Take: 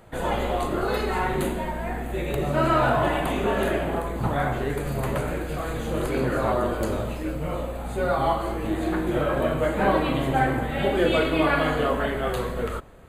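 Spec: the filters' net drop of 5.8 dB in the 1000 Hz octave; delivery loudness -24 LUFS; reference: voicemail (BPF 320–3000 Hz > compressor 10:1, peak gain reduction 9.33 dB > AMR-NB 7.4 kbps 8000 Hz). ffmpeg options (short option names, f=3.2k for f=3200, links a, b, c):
-af "highpass=320,lowpass=3k,equalizer=f=1k:t=o:g=-8,acompressor=threshold=-28dB:ratio=10,volume=11dB" -ar 8000 -c:a libopencore_amrnb -b:a 7400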